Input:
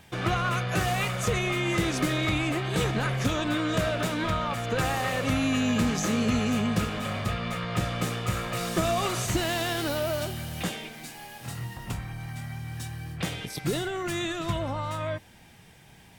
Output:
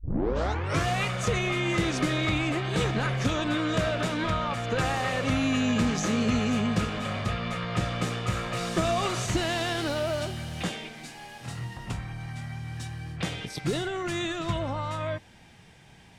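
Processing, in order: tape start-up on the opening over 0.87 s; low-pass 7.8 kHz 12 dB/octave

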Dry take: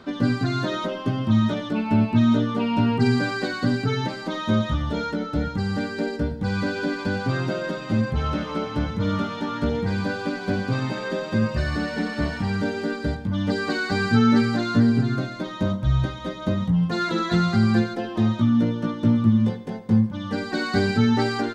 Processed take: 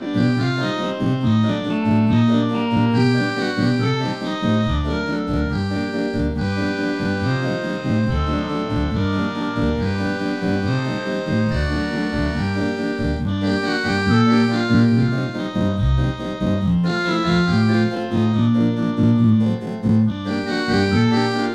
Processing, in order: every event in the spectrogram widened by 120 ms

